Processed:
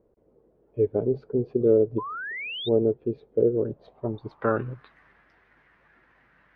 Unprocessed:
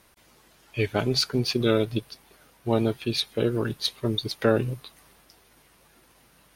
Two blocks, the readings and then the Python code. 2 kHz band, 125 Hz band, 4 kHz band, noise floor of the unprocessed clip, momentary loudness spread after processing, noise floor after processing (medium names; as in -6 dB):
-1.0 dB, -4.5 dB, -11.5 dB, -60 dBFS, 12 LU, -64 dBFS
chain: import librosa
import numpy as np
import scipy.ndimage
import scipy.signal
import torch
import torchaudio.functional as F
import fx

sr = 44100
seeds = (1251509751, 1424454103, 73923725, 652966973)

y = fx.filter_sweep_lowpass(x, sr, from_hz=460.0, to_hz=1800.0, start_s=3.53, end_s=4.91, q=3.8)
y = fx.spec_paint(y, sr, seeds[0], shape='rise', start_s=1.98, length_s=0.71, low_hz=960.0, high_hz=3800.0, level_db=-29.0)
y = y * 10.0 ** (-5.0 / 20.0)